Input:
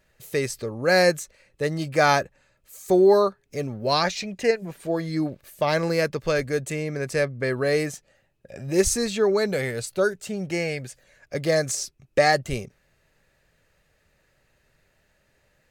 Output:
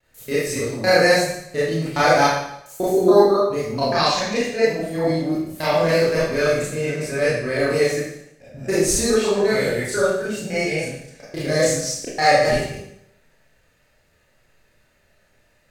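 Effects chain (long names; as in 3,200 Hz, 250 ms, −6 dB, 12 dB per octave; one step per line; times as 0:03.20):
reversed piece by piece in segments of 140 ms
four-comb reverb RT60 0.73 s, combs from 25 ms, DRR −9.5 dB
pitch vibrato 0.58 Hz 12 cents
level −5 dB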